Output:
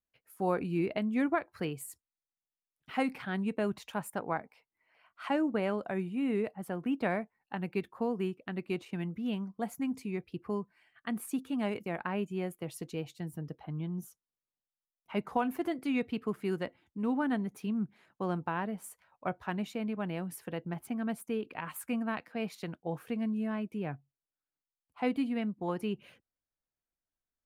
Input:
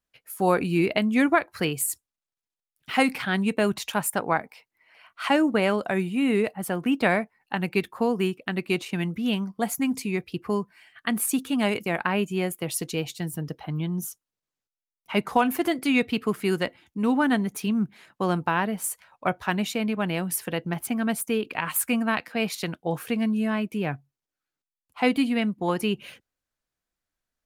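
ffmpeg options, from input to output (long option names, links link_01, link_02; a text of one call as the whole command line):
ffmpeg -i in.wav -af "highshelf=frequency=2100:gain=-10.5,volume=-8dB" out.wav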